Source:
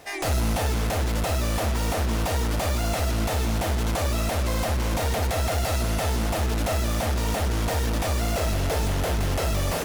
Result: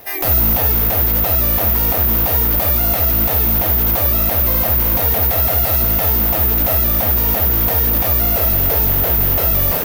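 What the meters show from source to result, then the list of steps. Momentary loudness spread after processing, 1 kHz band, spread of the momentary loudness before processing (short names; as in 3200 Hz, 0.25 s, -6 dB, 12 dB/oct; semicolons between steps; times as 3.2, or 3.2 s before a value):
1 LU, +4.5 dB, 1 LU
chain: high shelf 7200 Hz -6 dB; careless resampling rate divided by 3×, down filtered, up zero stuff; gain +4.5 dB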